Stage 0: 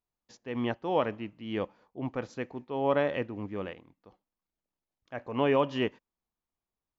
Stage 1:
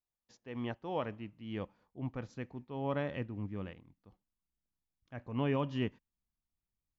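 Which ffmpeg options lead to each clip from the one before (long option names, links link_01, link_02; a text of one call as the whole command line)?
ffmpeg -i in.wav -af "asubboost=boost=4.5:cutoff=220,volume=-8dB" out.wav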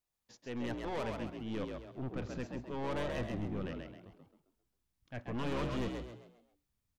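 ffmpeg -i in.wav -filter_complex "[0:a]aeval=exprs='(tanh(112*val(0)+0.45)-tanh(0.45))/112':channel_layout=same,asplit=6[link_01][link_02][link_03][link_04][link_05][link_06];[link_02]adelay=133,afreqshift=58,volume=-4.5dB[link_07];[link_03]adelay=266,afreqshift=116,volume=-13.1dB[link_08];[link_04]adelay=399,afreqshift=174,volume=-21.8dB[link_09];[link_05]adelay=532,afreqshift=232,volume=-30.4dB[link_10];[link_06]adelay=665,afreqshift=290,volume=-39dB[link_11];[link_01][link_07][link_08][link_09][link_10][link_11]amix=inputs=6:normalize=0,volume=6dB" out.wav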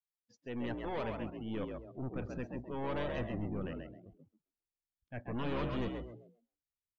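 ffmpeg -i in.wav -af "afftdn=noise_reduction=22:noise_floor=-53" out.wav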